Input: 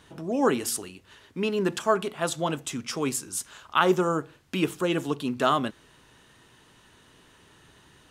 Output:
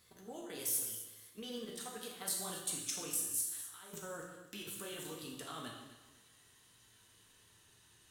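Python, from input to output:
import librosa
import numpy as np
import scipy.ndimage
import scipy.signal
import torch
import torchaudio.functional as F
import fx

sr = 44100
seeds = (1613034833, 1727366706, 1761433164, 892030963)

p1 = fx.pitch_glide(x, sr, semitones=3.0, runs='ending unshifted')
p2 = fx.peak_eq(p1, sr, hz=86.0, db=4.5, octaves=1.8)
p3 = fx.over_compress(p2, sr, threshold_db=-27.0, ratio=-0.5)
p4 = librosa.effects.preemphasis(p3, coef=0.8, zi=[0.0])
p5 = fx.level_steps(p4, sr, step_db=11)
p6 = p5 + fx.echo_feedback(p5, sr, ms=253, feedback_pct=28, wet_db=-15, dry=0)
p7 = fx.rev_gated(p6, sr, seeds[0], gate_ms=310, shape='falling', drr_db=-1.5)
y = p7 * 10.0 ** (-3.5 / 20.0)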